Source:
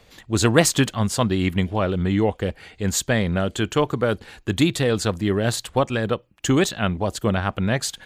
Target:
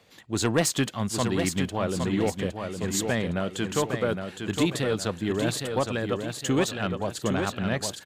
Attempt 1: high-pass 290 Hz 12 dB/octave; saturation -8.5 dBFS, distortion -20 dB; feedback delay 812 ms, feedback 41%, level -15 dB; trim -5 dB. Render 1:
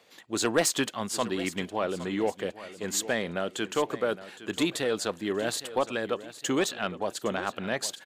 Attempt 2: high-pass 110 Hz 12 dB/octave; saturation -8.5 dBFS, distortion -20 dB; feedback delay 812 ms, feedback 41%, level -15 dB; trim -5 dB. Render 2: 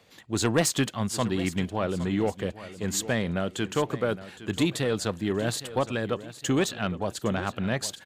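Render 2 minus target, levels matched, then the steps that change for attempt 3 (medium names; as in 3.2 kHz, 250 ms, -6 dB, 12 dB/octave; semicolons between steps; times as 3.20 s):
echo-to-direct -9 dB
change: feedback delay 812 ms, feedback 41%, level -6 dB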